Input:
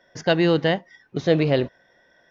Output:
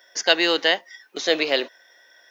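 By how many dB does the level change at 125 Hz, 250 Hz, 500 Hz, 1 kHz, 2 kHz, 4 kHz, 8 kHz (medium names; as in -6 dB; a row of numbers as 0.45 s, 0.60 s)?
under -25 dB, -7.5 dB, -2.5 dB, +0.5 dB, +6.0 dB, +10.0 dB, no reading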